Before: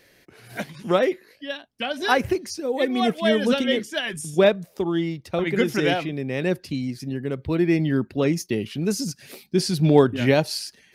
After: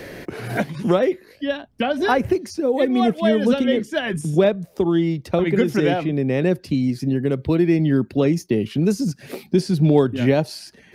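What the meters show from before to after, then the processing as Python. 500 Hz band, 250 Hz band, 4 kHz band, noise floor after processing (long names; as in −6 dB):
+2.5 dB, +4.5 dB, −3.5 dB, −51 dBFS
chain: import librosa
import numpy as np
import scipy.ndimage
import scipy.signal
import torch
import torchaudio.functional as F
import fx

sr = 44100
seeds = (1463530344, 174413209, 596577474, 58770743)

y = fx.tilt_shelf(x, sr, db=4.5, hz=1100.0)
y = fx.band_squash(y, sr, depth_pct=70)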